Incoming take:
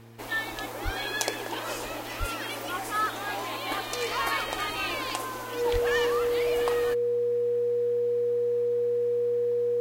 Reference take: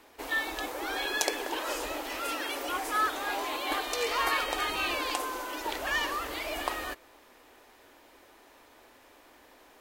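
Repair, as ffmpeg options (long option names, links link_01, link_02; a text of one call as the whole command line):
ffmpeg -i in.wav -filter_complex "[0:a]bandreject=frequency=115:width_type=h:width=4,bandreject=frequency=230:width_type=h:width=4,bandreject=frequency=345:width_type=h:width=4,bandreject=frequency=460:width_type=h:width=4,bandreject=frequency=480:width=30,asplit=3[link_01][link_02][link_03];[link_01]afade=type=out:start_time=0.84:duration=0.02[link_04];[link_02]highpass=frequency=140:width=0.5412,highpass=frequency=140:width=1.3066,afade=type=in:start_time=0.84:duration=0.02,afade=type=out:start_time=0.96:duration=0.02[link_05];[link_03]afade=type=in:start_time=0.96:duration=0.02[link_06];[link_04][link_05][link_06]amix=inputs=3:normalize=0,asplit=3[link_07][link_08][link_09];[link_07]afade=type=out:start_time=2.19:duration=0.02[link_10];[link_08]highpass=frequency=140:width=0.5412,highpass=frequency=140:width=1.3066,afade=type=in:start_time=2.19:duration=0.02,afade=type=out:start_time=2.31:duration=0.02[link_11];[link_09]afade=type=in:start_time=2.31:duration=0.02[link_12];[link_10][link_11][link_12]amix=inputs=3:normalize=0,asplit=3[link_13][link_14][link_15];[link_13]afade=type=out:start_time=5.72:duration=0.02[link_16];[link_14]highpass=frequency=140:width=0.5412,highpass=frequency=140:width=1.3066,afade=type=in:start_time=5.72:duration=0.02,afade=type=out:start_time=5.84:duration=0.02[link_17];[link_15]afade=type=in:start_time=5.84:duration=0.02[link_18];[link_16][link_17][link_18]amix=inputs=3:normalize=0" out.wav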